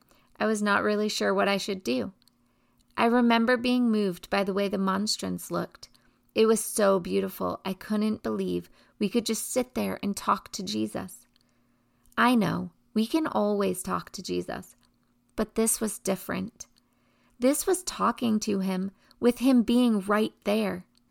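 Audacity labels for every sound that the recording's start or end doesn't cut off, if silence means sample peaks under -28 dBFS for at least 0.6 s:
2.970000	5.650000	sound
6.360000	11.030000	sound
12.180000	14.590000	sound
15.380000	16.610000	sound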